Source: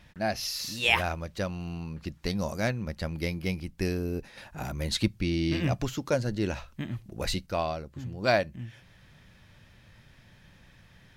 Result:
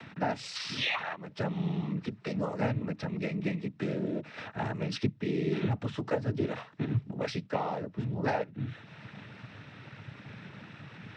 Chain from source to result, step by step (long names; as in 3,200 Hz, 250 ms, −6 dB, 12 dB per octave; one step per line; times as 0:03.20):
0:00.55–0:01.16: flat-topped bell 1,900 Hz +12 dB 2.7 octaves
downward compressor 5 to 1, threshold −34 dBFS, peak gain reduction 24.5 dB
high-frequency loss of the air 290 metres
upward compression, threshold −44 dBFS
cochlear-implant simulation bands 12
level +7.5 dB